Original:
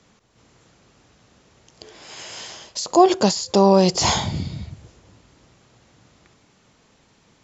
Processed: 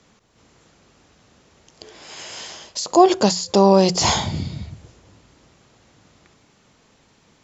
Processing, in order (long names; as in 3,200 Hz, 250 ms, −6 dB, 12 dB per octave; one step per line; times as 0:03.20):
mains-hum notches 60/120/180 Hz
level +1 dB